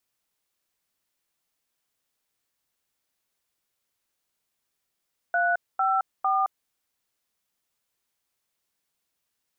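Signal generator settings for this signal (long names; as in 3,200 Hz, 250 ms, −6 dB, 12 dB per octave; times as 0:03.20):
touch tones "354", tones 217 ms, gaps 235 ms, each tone −23 dBFS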